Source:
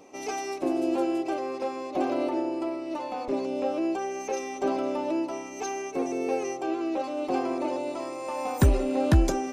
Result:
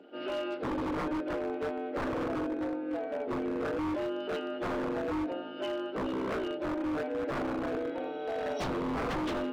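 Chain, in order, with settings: frequency axis rescaled in octaves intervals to 77%; high-pass 140 Hz 24 dB/octave; treble shelf 3.7 kHz -9.5 dB; wavefolder -27.5 dBFS

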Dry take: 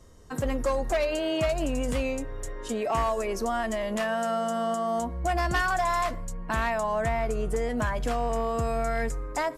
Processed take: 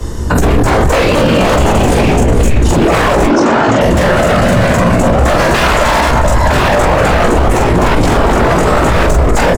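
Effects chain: bass shelf 470 Hz +8 dB; band-stop 580 Hz, Q 12; echo whose repeats swap between lows and highs 224 ms, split 880 Hz, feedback 54%, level -4 dB; wavefolder -20.5 dBFS; whisper effect; 3.26–3.81 s: cabinet simulation 260–6900 Hz, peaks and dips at 360 Hz +9 dB, 990 Hz +5 dB, 1.5 kHz +4 dB; frequency shift -85 Hz; early reflections 17 ms -4 dB, 44 ms -3 dB; loudness maximiser +27.5 dB; trim -1 dB

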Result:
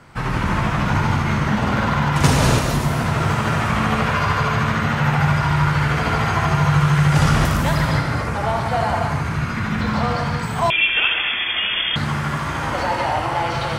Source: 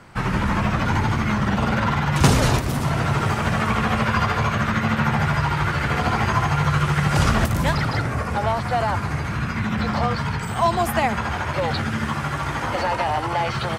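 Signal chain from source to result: gated-style reverb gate 310 ms flat, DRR 0 dB; 10.70–11.96 s: frequency inversion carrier 3.4 kHz; trim -1 dB

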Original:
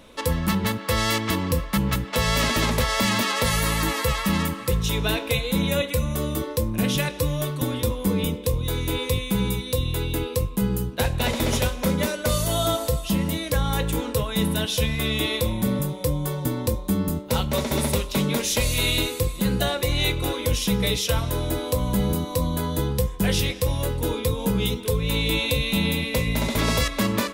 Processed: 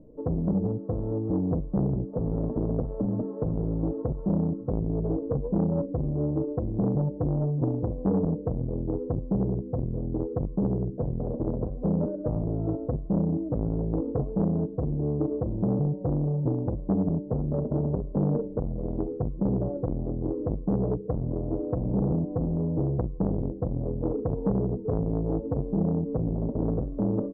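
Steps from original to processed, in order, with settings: inverse Chebyshev low-pass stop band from 2.2 kHz, stop band 70 dB; comb 6.6 ms, depth 53%; transformer saturation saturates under 350 Hz

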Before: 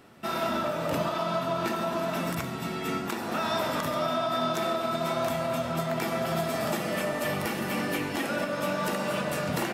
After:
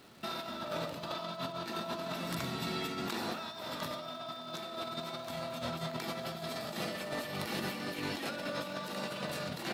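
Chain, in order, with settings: peaking EQ 4.1 kHz +10.5 dB 0.63 oct; compressor with a negative ratio -31 dBFS, ratio -0.5; crackle 480 per s -44 dBFS; trim -7 dB

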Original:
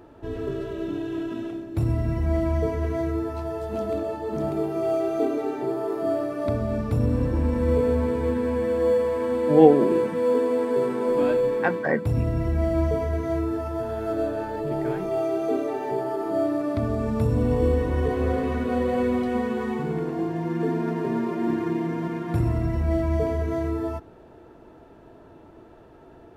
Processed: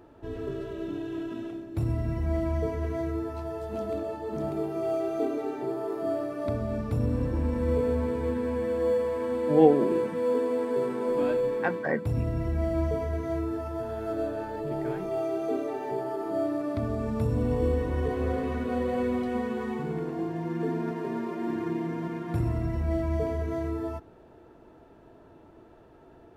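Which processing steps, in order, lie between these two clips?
20.91–21.56 s: bass shelf 130 Hz -10.5 dB; trim -4.5 dB

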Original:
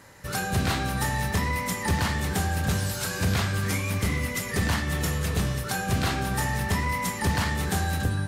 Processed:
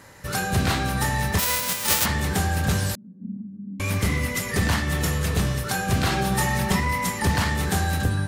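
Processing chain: 1.38–2.04 s: formants flattened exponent 0.1; 2.95–3.80 s: Butterworth band-pass 220 Hz, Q 4.5; 6.11–6.80 s: comb 5.4 ms, depth 75%; trim +3 dB

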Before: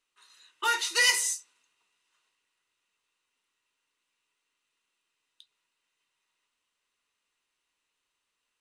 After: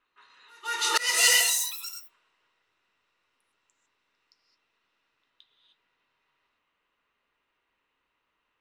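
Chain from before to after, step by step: gated-style reverb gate 330 ms rising, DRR 3.5 dB; in parallel at -1 dB: compression, threshold -33 dBFS, peak gain reduction 14 dB; on the sum: level-controlled noise filter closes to 2 kHz, open at -24 dBFS; ever faster or slower copies 498 ms, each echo +6 st, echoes 3, each echo -6 dB; slow attack 264 ms; on a send: reverse echo 169 ms -23.5 dB; on the sum: trim +2 dB

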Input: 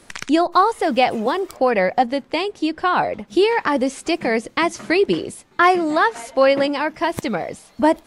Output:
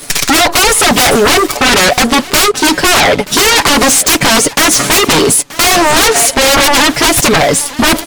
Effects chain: treble shelf 3.5 kHz +11.5 dB; comb 7 ms, depth 77%; waveshaping leveller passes 2; reverse; upward compressor, threshold -29 dBFS; reverse; sine folder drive 14 dB, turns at -0.5 dBFS; on a send: delay 930 ms -18 dB; on the sum: trim -4 dB

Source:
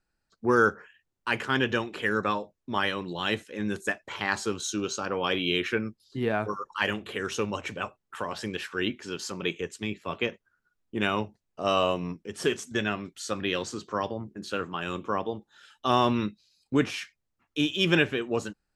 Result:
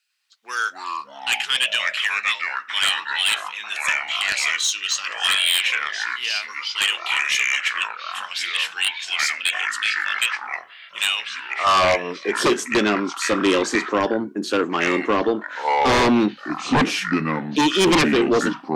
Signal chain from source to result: high-pass sweep 2.8 kHz -> 290 Hz, 11.16–12.37 s; ever faster or slower copies 102 ms, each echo -5 st, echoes 3, each echo -6 dB; sine folder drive 13 dB, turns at -6 dBFS; trim -6.5 dB

